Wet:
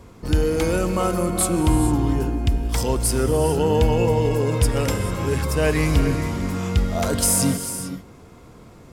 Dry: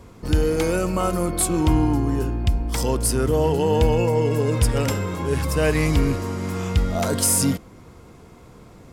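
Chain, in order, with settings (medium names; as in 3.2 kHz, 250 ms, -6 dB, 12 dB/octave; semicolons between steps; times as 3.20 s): gated-style reverb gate 470 ms rising, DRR 8.5 dB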